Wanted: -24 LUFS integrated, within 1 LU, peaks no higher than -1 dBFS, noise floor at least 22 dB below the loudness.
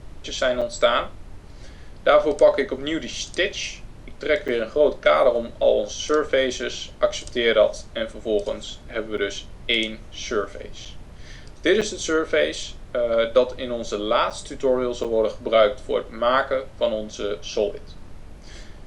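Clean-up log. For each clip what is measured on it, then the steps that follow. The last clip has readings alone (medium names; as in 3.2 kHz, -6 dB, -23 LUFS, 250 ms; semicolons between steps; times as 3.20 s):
dropouts 7; longest dropout 6.5 ms; noise floor -42 dBFS; noise floor target -45 dBFS; loudness -22.5 LUFS; peak level -4.5 dBFS; loudness target -24.0 LUFS
-> interpolate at 0.61/4.48/9.17/10.85/11.81/14.30/15.04 s, 6.5 ms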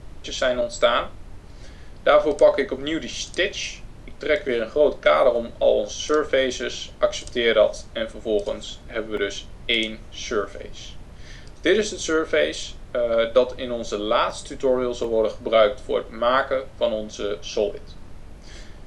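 dropouts 0; noise floor -42 dBFS; noise floor target -45 dBFS
-> noise print and reduce 6 dB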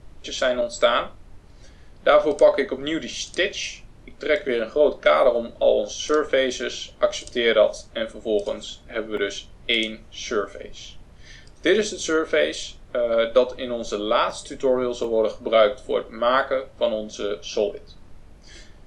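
noise floor -47 dBFS; loudness -22.5 LUFS; peak level -4.5 dBFS; loudness target -24.0 LUFS
-> trim -1.5 dB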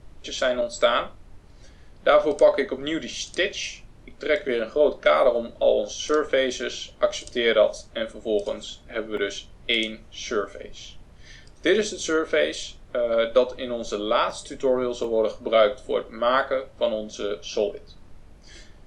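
loudness -24.0 LUFS; peak level -6.0 dBFS; noise floor -49 dBFS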